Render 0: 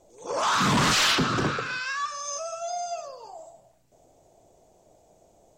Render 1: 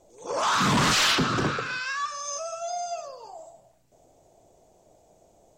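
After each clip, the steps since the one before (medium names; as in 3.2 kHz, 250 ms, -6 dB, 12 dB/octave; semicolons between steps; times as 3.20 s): no audible change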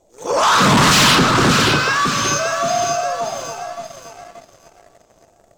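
on a send: echo whose repeats swap between lows and highs 289 ms, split 1.1 kHz, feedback 64%, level -3 dB; on the sum: waveshaping leveller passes 2; trim +4.5 dB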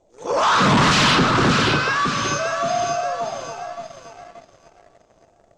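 distance through air 86 m; trim -2.5 dB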